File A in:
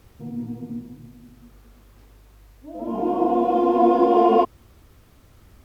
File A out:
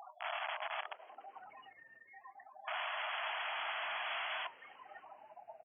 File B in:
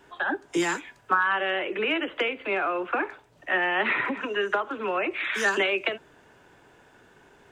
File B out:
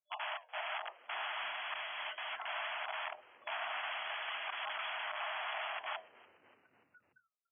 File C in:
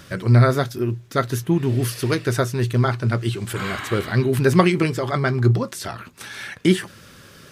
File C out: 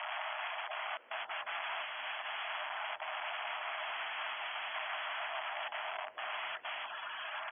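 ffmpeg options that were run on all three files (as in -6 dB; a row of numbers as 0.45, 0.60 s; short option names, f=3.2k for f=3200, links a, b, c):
-filter_complex "[0:a]aemphasis=mode=production:type=bsi,acrusher=samples=18:mix=1:aa=0.000001:lfo=1:lforange=28.8:lforate=0.39,afftfilt=real='re*gte(hypot(re,im),0.0112)':imag='im*gte(hypot(re,im),0.0112)':win_size=1024:overlap=0.75,equalizer=f=2.2k:t=o:w=0.36:g=-6,acompressor=threshold=-27dB:ratio=5,asplit=2[a][b];[b]adelay=24,volume=-12.5dB[c];[a][c]amix=inputs=2:normalize=0,asoftclip=type=tanh:threshold=-25.5dB,flanger=delay=3.9:depth=7.9:regen=-77:speed=0.74:shape=sinusoidal,aeval=exprs='(mod(119*val(0)+1,2)-1)/119':c=same,afftfilt=real='re*between(b*sr/4096,600,3400)':imag='im*between(b*sr/4096,600,3400)':win_size=4096:overlap=0.75,asplit=2[d][e];[e]asplit=4[f][g][h][i];[f]adelay=291,afreqshift=-130,volume=-22.5dB[j];[g]adelay=582,afreqshift=-260,volume=-27.1dB[k];[h]adelay=873,afreqshift=-390,volume=-31.7dB[l];[i]adelay=1164,afreqshift=-520,volume=-36.2dB[m];[j][k][l][m]amix=inputs=4:normalize=0[n];[d][n]amix=inputs=2:normalize=0,volume=10dB"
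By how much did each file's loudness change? -19.5, -13.5, -18.5 LU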